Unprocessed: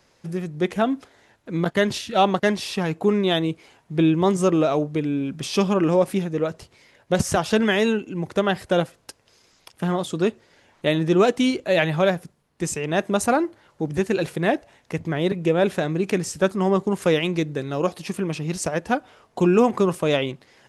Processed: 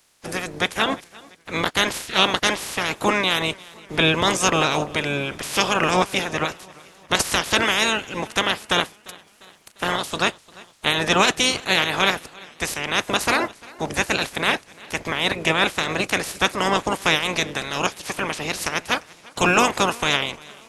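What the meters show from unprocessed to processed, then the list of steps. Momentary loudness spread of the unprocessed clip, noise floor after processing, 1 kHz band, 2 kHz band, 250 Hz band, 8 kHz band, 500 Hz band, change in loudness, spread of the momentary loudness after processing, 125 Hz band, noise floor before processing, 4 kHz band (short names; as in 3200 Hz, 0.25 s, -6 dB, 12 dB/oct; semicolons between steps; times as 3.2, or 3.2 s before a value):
10 LU, -52 dBFS, +4.0 dB, +8.0 dB, -6.0 dB, +7.0 dB, -4.5 dB, +1.0 dB, 10 LU, -5.0 dB, -62 dBFS, +10.0 dB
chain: spectral limiter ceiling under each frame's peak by 28 dB; warbling echo 0.347 s, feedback 54%, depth 60 cents, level -23 dB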